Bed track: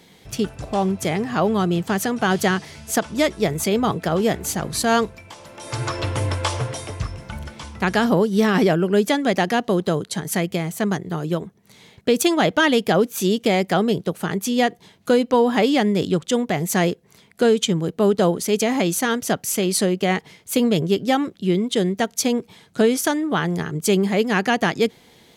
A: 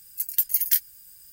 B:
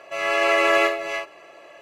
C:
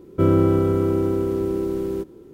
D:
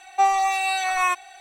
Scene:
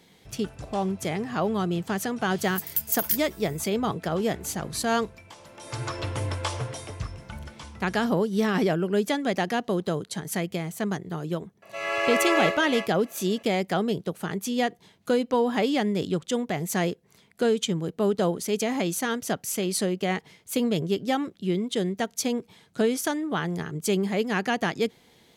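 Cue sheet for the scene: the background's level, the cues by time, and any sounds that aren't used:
bed track −6.5 dB
0:02.38: mix in A −4.5 dB
0:11.62: mix in B −5.5 dB
not used: C, D

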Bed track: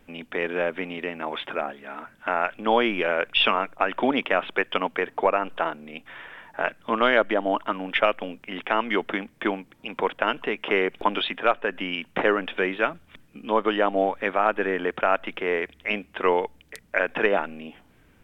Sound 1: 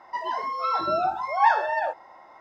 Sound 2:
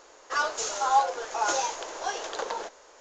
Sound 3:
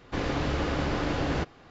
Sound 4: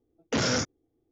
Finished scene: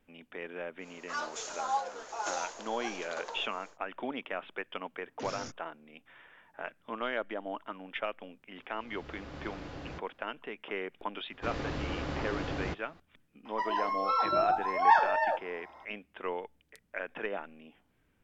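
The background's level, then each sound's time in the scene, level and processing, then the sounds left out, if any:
bed track −14.5 dB
0:00.78: mix in 2 −9.5 dB, fades 0.10 s + upward compression, threshold −37 dBFS
0:04.87: mix in 4 −16 dB
0:08.55: mix in 3 −15 dB + volume swells 779 ms
0:11.30: mix in 3 −7.5 dB
0:13.45: mix in 1 −3 dB

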